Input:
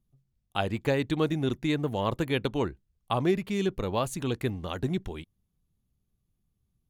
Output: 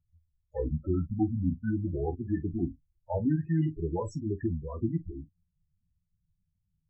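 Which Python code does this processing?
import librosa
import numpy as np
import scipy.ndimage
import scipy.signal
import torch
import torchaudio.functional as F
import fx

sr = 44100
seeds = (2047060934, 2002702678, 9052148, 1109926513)

y = fx.pitch_glide(x, sr, semitones=-8.0, runs='ending unshifted')
y = fx.spec_topn(y, sr, count=8)
y = fx.room_early_taps(y, sr, ms=(12, 45), db=(-6.0, -16.0))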